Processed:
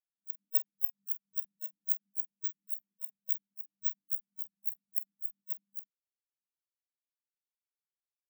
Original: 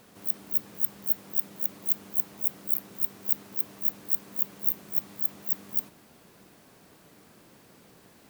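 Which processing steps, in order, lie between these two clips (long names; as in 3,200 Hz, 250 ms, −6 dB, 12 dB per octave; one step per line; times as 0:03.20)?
double-tracking delay 46 ms −4.5 dB
every bin expanded away from the loudest bin 4 to 1
level −8 dB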